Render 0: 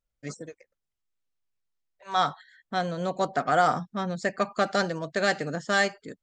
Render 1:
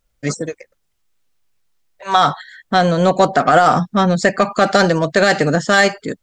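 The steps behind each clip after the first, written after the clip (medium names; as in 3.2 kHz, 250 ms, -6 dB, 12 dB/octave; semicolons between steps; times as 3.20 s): in parallel at -7 dB: saturation -26 dBFS, distortion -7 dB; on the sum: loudness maximiser +14.5 dB; trim -1 dB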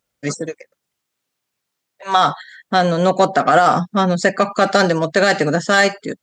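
high-pass 140 Hz 12 dB/octave; trim -1 dB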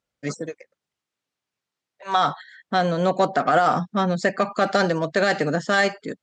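distance through air 53 m; trim -5.5 dB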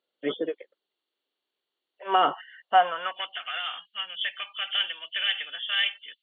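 knee-point frequency compression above 2.7 kHz 4:1; high-pass sweep 370 Hz -> 2.8 kHz, 2.47–3.33 s; trim -3 dB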